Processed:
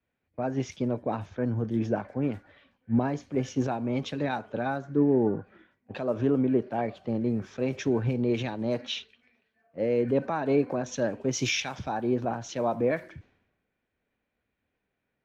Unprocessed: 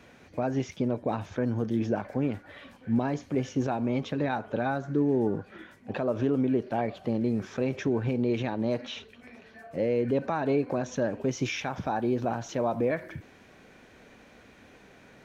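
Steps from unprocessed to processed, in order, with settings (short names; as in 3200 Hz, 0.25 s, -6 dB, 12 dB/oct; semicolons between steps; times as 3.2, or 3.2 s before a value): low-pass opened by the level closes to 2200 Hz, open at -26 dBFS; three-band expander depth 100%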